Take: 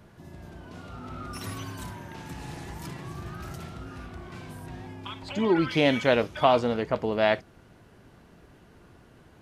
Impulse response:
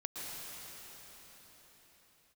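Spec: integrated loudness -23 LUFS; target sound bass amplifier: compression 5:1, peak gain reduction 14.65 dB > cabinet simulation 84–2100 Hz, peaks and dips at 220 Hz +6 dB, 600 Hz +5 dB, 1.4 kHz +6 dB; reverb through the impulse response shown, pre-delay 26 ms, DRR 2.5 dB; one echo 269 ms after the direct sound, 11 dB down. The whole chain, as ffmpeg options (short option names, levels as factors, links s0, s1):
-filter_complex "[0:a]aecho=1:1:269:0.282,asplit=2[s0][s1];[1:a]atrim=start_sample=2205,adelay=26[s2];[s1][s2]afir=irnorm=-1:irlink=0,volume=0.631[s3];[s0][s3]amix=inputs=2:normalize=0,acompressor=threshold=0.0282:ratio=5,highpass=f=84:w=0.5412,highpass=f=84:w=1.3066,equalizer=f=220:t=q:w=4:g=6,equalizer=f=600:t=q:w=4:g=5,equalizer=f=1400:t=q:w=4:g=6,lowpass=f=2100:w=0.5412,lowpass=f=2100:w=1.3066,volume=3.55"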